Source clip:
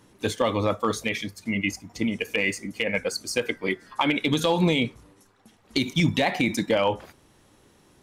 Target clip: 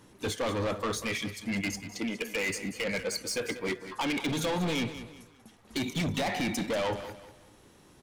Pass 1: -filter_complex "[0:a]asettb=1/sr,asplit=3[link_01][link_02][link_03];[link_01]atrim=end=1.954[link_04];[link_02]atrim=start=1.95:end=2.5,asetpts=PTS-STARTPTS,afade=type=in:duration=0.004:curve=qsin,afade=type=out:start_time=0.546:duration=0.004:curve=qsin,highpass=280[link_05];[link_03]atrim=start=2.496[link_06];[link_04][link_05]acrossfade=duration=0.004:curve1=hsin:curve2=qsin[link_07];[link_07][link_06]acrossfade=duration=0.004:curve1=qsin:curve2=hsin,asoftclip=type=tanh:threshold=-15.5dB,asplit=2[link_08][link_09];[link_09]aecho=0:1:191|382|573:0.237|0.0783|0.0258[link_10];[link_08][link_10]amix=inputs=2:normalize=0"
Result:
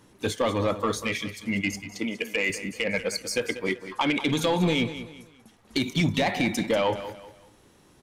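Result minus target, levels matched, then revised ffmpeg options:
soft clipping: distortion −11 dB
-filter_complex "[0:a]asettb=1/sr,asplit=3[link_01][link_02][link_03];[link_01]atrim=end=1.954[link_04];[link_02]atrim=start=1.95:end=2.5,asetpts=PTS-STARTPTS,afade=type=in:duration=0.004:curve=qsin,afade=type=out:start_time=0.546:duration=0.004:curve=qsin,highpass=280[link_05];[link_03]atrim=start=2.496[link_06];[link_04][link_05]acrossfade=duration=0.004:curve1=hsin:curve2=qsin[link_07];[link_07][link_06]acrossfade=duration=0.004:curve1=qsin:curve2=hsin,asoftclip=type=tanh:threshold=-27dB,asplit=2[link_08][link_09];[link_09]aecho=0:1:191|382|573:0.237|0.0783|0.0258[link_10];[link_08][link_10]amix=inputs=2:normalize=0"

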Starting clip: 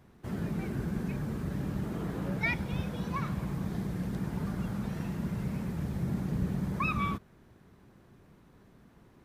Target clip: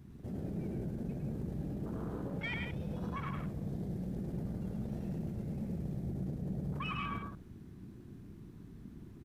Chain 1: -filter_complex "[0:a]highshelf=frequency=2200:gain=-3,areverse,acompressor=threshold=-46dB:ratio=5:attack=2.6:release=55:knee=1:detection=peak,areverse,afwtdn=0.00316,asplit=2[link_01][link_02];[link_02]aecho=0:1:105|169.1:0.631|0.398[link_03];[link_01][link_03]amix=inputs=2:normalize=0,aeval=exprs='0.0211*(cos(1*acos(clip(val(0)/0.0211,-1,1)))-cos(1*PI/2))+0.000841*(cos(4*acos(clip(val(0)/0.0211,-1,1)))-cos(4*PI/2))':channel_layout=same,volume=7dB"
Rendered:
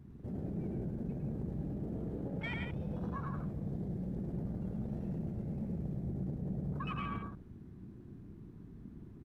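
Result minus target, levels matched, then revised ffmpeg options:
4,000 Hz band −4.5 dB
-filter_complex "[0:a]highshelf=frequency=2200:gain=8.5,areverse,acompressor=threshold=-46dB:ratio=5:attack=2.6:release=55:knee=1:detection=peak,areverse,afwtdn=0.00316,asplit=2[link_01][link_02];[link_02]aecho=0:1:105|169.1:0.631|0.398[link_03];[link_01][link_03]amix=inputs=2:normalize=0,aeval=exprs='0.0211*(cos(1*acos(clip(val(0)/0.0211,-1,1)))-cos(1*PI/2))+0.000841*(cos(4*acos(clip(val(0)/0.0211,-1,1)))-cos(4*PI/2))':channel_layout=same,volume=7dB"

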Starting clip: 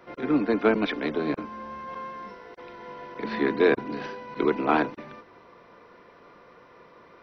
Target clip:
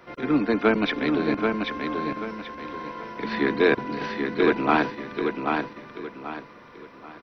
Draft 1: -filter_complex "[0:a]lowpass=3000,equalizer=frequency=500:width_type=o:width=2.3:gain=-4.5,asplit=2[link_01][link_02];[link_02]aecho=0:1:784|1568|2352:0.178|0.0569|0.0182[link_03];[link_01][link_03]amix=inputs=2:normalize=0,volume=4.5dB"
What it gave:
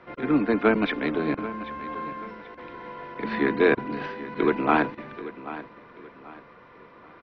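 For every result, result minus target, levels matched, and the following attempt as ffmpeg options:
echo-to-direct −10.5 dB; 4,000 Hz band −5.5 dB
-filter_complex "[0:a]lowpass=3000,equalizer=frequency=500:width_type=o:width=2.3:gain=-4.5,asplit=2[link_01][link_02];[link_02]aecho=0:1:784|1568|2352|3136:0.596|0.191|0.061|0.0195[link_03];[link_01][link_03]amix=inputs=2:normalize=0,volume=4.5dB"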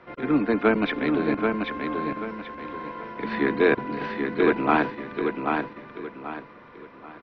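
4,000 Hz band −4.5 dB
-filter_complex "[0:a]equalizer=frequency=500:width_type=o:width=2.3:gain=-4.5,asplit=2[link_01][link_02];[link_02]aecho=0:1:784|1568|2352|3136:0.596|0.191|0.061|0.0195[link_03];[link_01][link_03]amix=inputs=2:normalize=0,volume=4.5dB"

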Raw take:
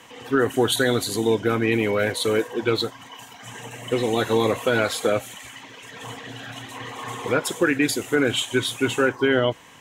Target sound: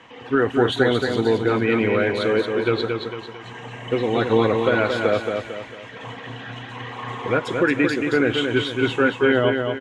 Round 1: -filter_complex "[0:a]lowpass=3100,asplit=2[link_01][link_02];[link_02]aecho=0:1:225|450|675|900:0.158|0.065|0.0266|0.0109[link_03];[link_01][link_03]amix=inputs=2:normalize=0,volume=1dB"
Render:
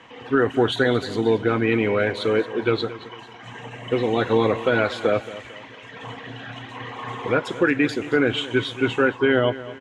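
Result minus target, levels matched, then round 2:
echo-to-direct −11 dB
-filter_complex "[0:a]lowpass=3100,asplit=2[link_01][link_02];[link_02]aecho=0:1:225|450|675|900|1125:0.562|0.231|0.0945|0.0388|0.0159[link_03];[link_01][link_03]amix=inputs=2:normalize=0,volume=1dB"

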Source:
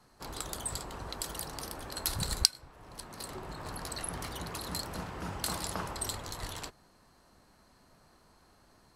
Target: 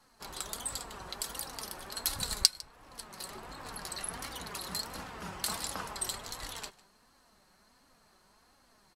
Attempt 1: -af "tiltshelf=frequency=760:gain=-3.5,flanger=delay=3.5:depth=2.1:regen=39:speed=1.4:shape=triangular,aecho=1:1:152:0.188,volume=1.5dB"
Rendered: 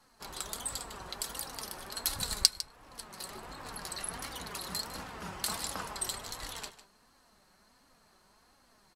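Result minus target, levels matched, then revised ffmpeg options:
echo-to-direct +7.5 dB
-af "tiltshelf=frequency=760:gain=-3.5,flanger=delay=3.5:depth=2.1:regen=39:speed=1.4:shape=triangular,aecho=1:1:152:0.0794,volume=1.5dB"

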